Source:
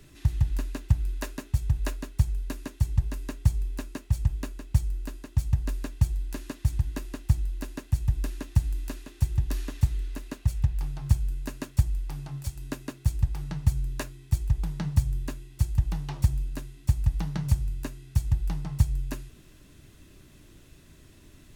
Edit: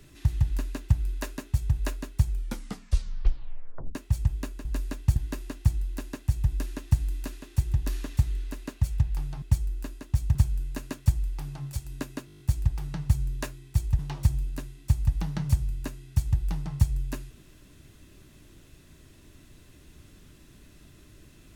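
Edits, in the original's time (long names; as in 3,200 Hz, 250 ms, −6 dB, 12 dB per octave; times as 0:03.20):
0:02.30: tape stop 1.65 s
0:04.65–0:05.58: move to 0:11.06
0:06.09–0:06.80: remove
0:12.97: stutter 0.02 s, 8 plays
0:14.56–0:15.98: remove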